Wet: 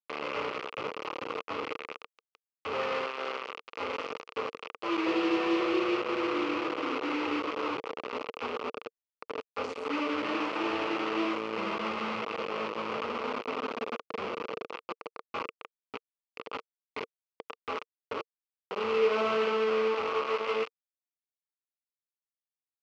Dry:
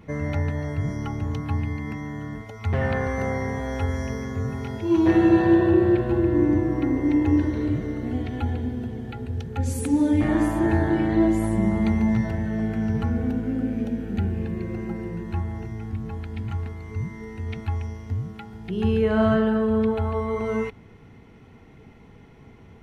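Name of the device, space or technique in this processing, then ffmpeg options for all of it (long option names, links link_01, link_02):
hand-held game console: -filter_complex "[0:a]asettb=1/sr,asplit=3[link_01][link_02][link_03];[link_01]atrim=end=3.064[link_04];[link_02]atrim=start=3.06:end=3.77,asetpts=PTS-STARTPTS,afade=type=in:duration=0.004:curve=qsin,afade=type=out:start_time=0.706:duration=0.004:curve=qsin,highpass=230[link_05];[link_03]atrim=start=3.766[link_06];[link_04][link_05]acrossfade=duration=0.004:curve1=hsin:curve2=qsin[link_07];[link_07][link_06]acrossfade=duration=0.004:curve1=qsin:curve2=hsin,acrusher=bits=3:mix=0:aa=0.000001,highpass=460,equalizer=frequency=460:width_type=q:width=4:gain=9,equalizer=frequency=710:width_type=q:width=4:gain=-6,equalizer=frequency=1200:width_type=q:width=4:gain=8,equalizer=frequency=1700:width_type=q:width=4:gain=-9,equalizer=frequency=2600:width_type=q:width=4:gain=5,equalizer=frequency=3700:width_type=q:width=4:gain=-7,lowpass=frequency=4000:width=0.5412,lowpass=frequency=4000:width=1.3066,volume=-6.5dB"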